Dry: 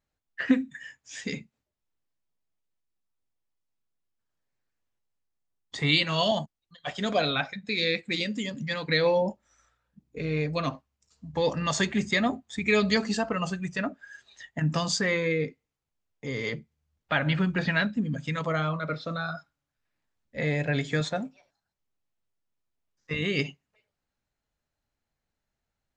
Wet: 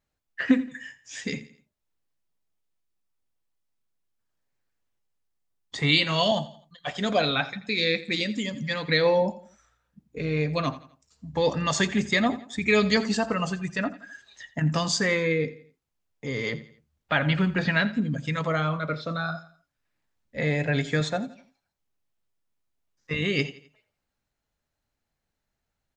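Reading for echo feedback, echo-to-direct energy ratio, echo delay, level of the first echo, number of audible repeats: 41%, -16.0 dB, 85 ms, -17.0 dB, 3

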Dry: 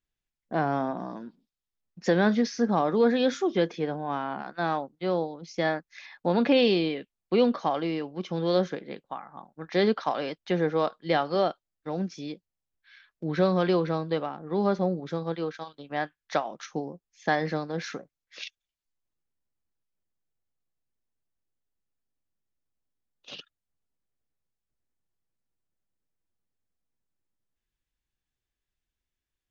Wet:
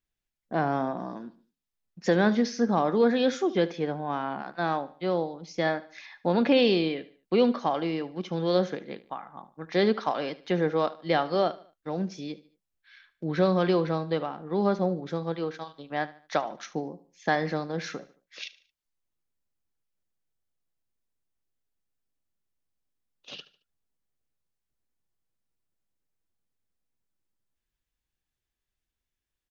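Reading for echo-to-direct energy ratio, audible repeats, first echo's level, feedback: -17.5 dB, 3, -18.0 dB, 39%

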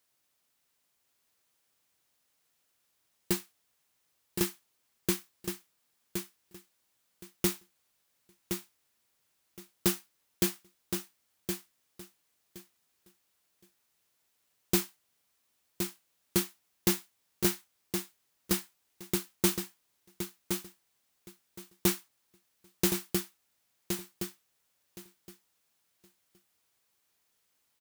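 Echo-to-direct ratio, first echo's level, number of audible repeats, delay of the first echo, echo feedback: -6.5 dB, -6.5 dB, 2, 1.068 s, 18%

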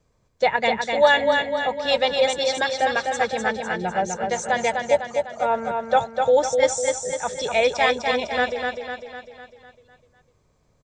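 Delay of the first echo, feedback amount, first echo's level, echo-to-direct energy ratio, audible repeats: 0.251 s, 53%, -4.5 dB, -3.0 dB, 6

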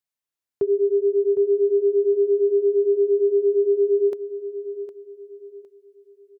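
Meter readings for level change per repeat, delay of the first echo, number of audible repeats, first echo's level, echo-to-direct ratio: -9.5 dB, 0.759 s, 3, -12.0 dB, -11.5 dB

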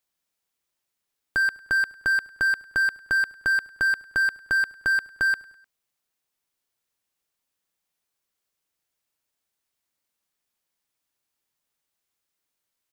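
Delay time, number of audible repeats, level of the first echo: 0.101 s, 3, -22.0 dB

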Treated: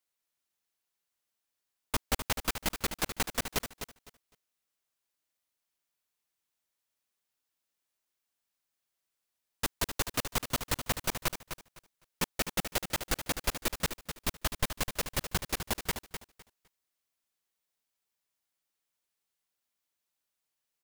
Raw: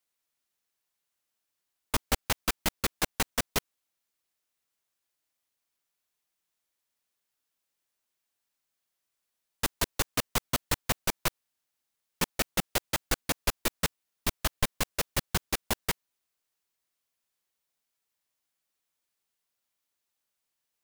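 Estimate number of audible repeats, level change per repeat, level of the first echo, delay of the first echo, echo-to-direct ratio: 2, -14.0 dB, -9.0 dB, 0.254 s, -9.0 dB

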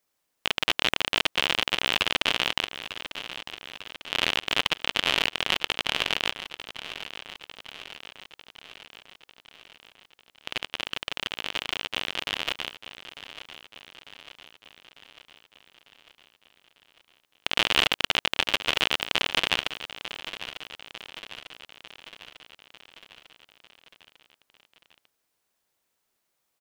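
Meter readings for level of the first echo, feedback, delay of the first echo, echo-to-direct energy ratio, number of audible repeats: -13.0 dB, 59%, 0.898 s, -11.0 dB, 5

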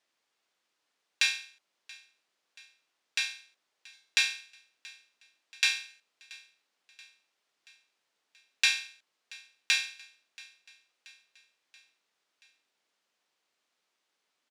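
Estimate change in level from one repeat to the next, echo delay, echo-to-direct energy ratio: -5.0 dB, 0.68 s, -21.0 dB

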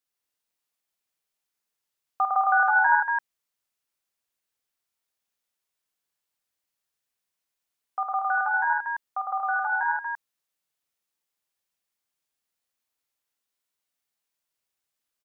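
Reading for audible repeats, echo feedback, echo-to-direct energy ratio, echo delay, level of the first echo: 4, no steady repeat, 0.0 dB, 50 ms, -3.5 dB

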